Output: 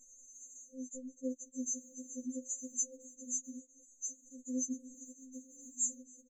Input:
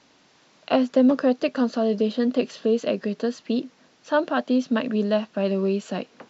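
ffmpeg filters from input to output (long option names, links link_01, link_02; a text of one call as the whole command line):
ffmpeg -i in.wav -filter_complex "[0:a]asplit=3[link_01][link_02][link_03];[link_01]afade=type=out:start_time=0.71:duration=0.02[link_04];[link_02]acompressor=threshold=-30dB:ratio=8,afade=type=in:start_time=0.71:duration=0.02,afade=type=out:start_time=1.24:duration=0.02[link_05];[link_03]afade=type=in:start_time=1.24:duration=0.02[link_06];[link_04][link_05][link_06]amix=inputs=3:normalize=0,firequalizer=gain_entry='entry(130,0);entry(240,-27);entry(2000,12)':delay=0.05:min_phase=1,alimiter=level_in=6.5dB:limit=-24dB:level=0:latency=1:release=121,volume=-6.5dB,equalizer=frequency=560:width_type=o:width=0.73:gain=-9.5,bandreject=frequency=50:width_type=h:width=6,bandreject=frequency=100:width_type=h:width=6,bandreject=frequency=150:width_type=h:width=6,bandreject=frequency=200:width_type=h:width=6,anlmdn=0.01,afftfilt=real='re*(1-between(b*sr/4096,550,6100))':imag='im*(1-between(b*sr/4096,550,6100))':win_size=4096:overlap=0.75,asplit=5[link_07][link_08][link_09][link_10][link_11];[link_08]adelay=265,afreqshift=52,volume=-24dB[link_12];[link_09]adelay=530,afreqshift=104,volume=-28.3dB[link_13];[link_10]adelay=795,afreqshift=156,volume=-32.6dB[link_14];[link_11]adelay=1060,afreqshift=208,volume=-36.9dB[link_15];[link_07][link_12][link_13][link_14][link_15]amix=inputs=5:normalize=0,afftfilt=real='re*3.46*eq(mod(b,12),0)':imag='im*3.46*eq(mod(b,12),0)':win_size=2048:overlap=0.75,volume=14dB" out.wav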